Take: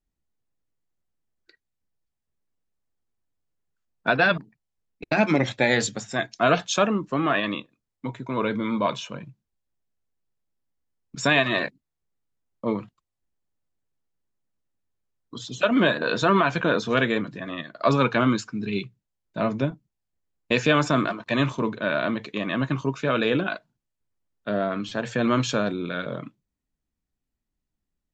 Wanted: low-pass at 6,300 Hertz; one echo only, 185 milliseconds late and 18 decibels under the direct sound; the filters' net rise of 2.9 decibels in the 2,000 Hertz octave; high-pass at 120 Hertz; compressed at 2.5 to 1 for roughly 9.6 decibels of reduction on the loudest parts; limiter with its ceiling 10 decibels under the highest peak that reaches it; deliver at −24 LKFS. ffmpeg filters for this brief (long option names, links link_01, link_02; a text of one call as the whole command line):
ffmpeg -i in.wav -af "highpass=120,lowpass=6300,equalizer=frequency=2000:width_type=o:gain=4,acompressor=threshold=-29dB:ratio=2.5,alimiter=limit=-21dB:level=0:latency=1,aecho=1:1:185:0.126,volume=9dB" out.wav